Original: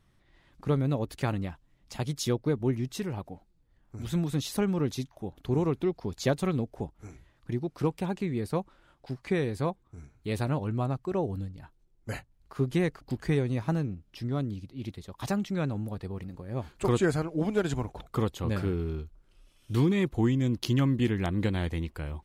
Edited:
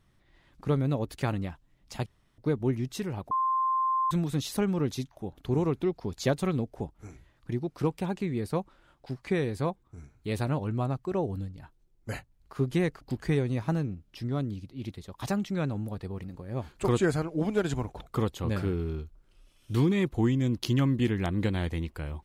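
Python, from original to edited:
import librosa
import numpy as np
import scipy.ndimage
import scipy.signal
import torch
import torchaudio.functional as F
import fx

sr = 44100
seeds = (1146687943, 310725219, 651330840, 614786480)

y = fx.edit(x, sr, fx.room_tone_fill(start_s=2.06, length_s=0.32),
    fx.bleep(start_s=3.31, length_s=0.8, hz=1050.0, db=-23.5), tone=tone)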